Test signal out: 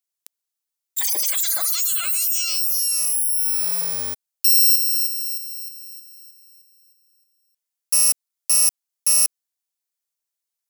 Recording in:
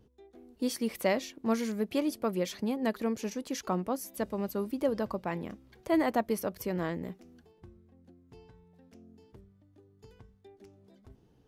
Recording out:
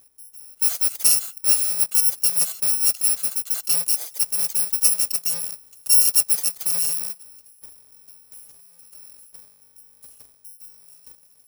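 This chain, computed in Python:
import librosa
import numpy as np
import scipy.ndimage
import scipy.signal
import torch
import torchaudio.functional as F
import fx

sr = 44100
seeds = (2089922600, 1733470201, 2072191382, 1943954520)

y = fx.bit_reversed(x, sr, seeds[0], block=128)
y = fx.bass_treble(y, sr, bass_db=-14, treble_db=9)
y = F.gain(torch.from_numpy(y), 2.5).numpy()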